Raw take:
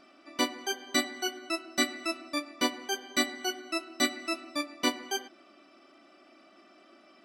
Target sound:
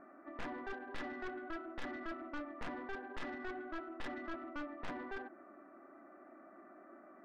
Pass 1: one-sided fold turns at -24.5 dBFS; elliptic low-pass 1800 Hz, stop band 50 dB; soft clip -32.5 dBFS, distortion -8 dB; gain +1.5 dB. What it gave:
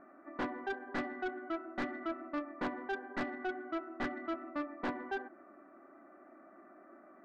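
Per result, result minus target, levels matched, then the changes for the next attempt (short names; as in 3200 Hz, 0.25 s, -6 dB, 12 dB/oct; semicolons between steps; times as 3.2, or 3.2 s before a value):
one-sided fold: distortion -12 dB; soft clip: distortion -5 dB
change: one-sided fold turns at -34.5 dBFS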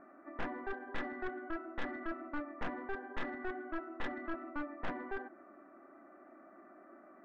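soft clip: distortion -4 dB
change: soft clip -39.5 dBFS, distortion -3 dB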